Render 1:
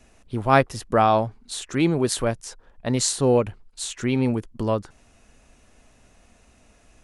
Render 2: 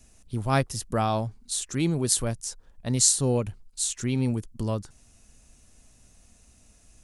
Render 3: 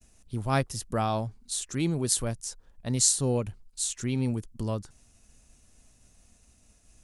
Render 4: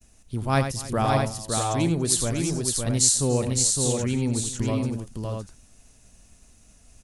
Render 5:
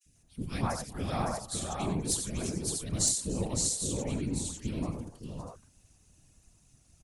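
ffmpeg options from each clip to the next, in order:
ffmpeg -i in.wav -af "bass=frequency=250:gain=9,treble=frequency=4000:gain=15,volume=-9dB" out.wav
ffmpeg -i in.wav -af "agate=range=-33dB:threshold=-54dB:ratio=3:detection=peak,volume=-2.5dB" out.wav
ffmpeg -i in.wav -af "aecho=1:1:89|286|561|641:0.376|0.112|0.631|0.501,volume=3dB" out.wav
ffmpeg -i in.wav -filter_complex "[0:a]acrossover=split=490|1800[link_01][link_02][link_03];[link_01]adelay=50[link_04];[link_02]adelay=140[link_05];[link_04][link_05][link_03]amix=inputs=3:normalize=0,aeval=exprs='0.794*(cos(1*acos(clip(val(0)/0.794,-1,1)))-cos(1*PI/2))+0.112*(cos(3*acos(clip(val(0)/0.794,-1,1)))-cos(3*PI/2))+0.0355*(cos(5*acos(clip(val(0)/0.794,-1,1)))-cos(5*PI/2))':channel_layout=same,afftfilt=real='hypot(re,im)*cos(2*PI*random(0))':imag='hypot(re,im)*sin(2*PI*random(1))':win_size=512:overlap=0.75" out.wav

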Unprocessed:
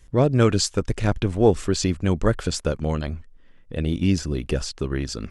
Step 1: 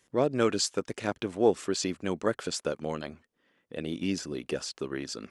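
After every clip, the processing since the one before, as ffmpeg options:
ffmpeg -i in.wav -af "highpass=260,volume=-5dB" out.wav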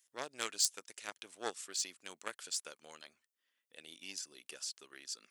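ffmpeg -i in.wav -af "aeval=exprs='0.316*(cos(1*acos(clip(val(0)/0.316,-1,1)))-cos(1*PI/2))+0.0708*(cos(3*acos(clip(val(0)/0.316,-1,1)))-cos(3*PI/2))+0.00178*(cos(6*acos(clip(val(0)/0.316,-1,1)))-cos(6*PI/2))':channel_layout=same,aderivative,volume=8dB" out.wav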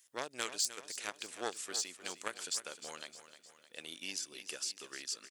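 ffmpeg -i in.wav -af "acompressor=threshold=-44dB:ratio=2,aecho=1:1:307|614|921|1228|1535:0.237|0.123|0.0641|0.0333|0.0173,volume=6.5dB" out.wav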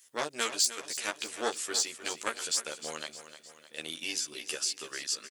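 ffmpeg -i in.wav -filter_complex "[0:a]asplit=2[link_01][link_02];[link_02]adelay=13,volume=-2dB[link_03];[link_01][link_03]amix=inputs=2:normalize=0,volume=5dB" out.wav

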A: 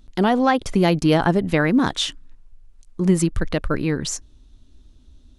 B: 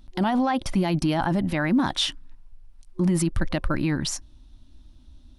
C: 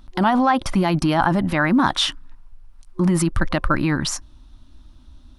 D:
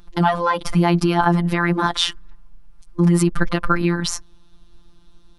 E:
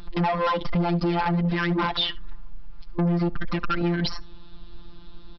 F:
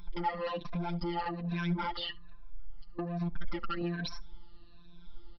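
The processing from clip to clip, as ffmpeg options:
ffmpeg -i in.wav -af "superequalizer=7b=0.282:9b=1.41:15b=0.562,alimiter=limit=-14.5dB:level=0:latency=1:release=10" out.wav
ffmpeg -i in.wav -af "equalizer=frequency=1200:width=1.4:gain=8,volume=3.5dB" out.wav
ffmpeg -i in.wav -af "afftfilt=real='hypot(re,im)*cos(PI*b)':imag='0':win_size=1024:overlap=0.75,volume=3.5dB" out.wav
ffmpeg -i in.wav -af "acompressor=threshold=-22dB:ratio=4,aresample=11025,asoftclip=type=tanh:threshold=-27dB,aresample=44100,aecho=1:1:72:0.0668,volume=8dB" out.wav
ffmpeg -i in.wav -af "afftfilt=real='re*pow(10,14/40*sin(2*PI*(1.6*log(max(b,1)*sr/1024/100)/log(2)-(-1.2)*(pts-256)/sr)))':imag='im*pow(10,14/40*sin(2*PI*(1.6*log(max(b,1)*sr/1024/100)/log(2)-(-1.2)*(pts-256)/sr)))':win_size=1024:overlap=0.75,flanger=delay=0.9:depth=4.6:regen=32:speed=0.91:shape=sinusoidal,volume=-9dB" out.wav

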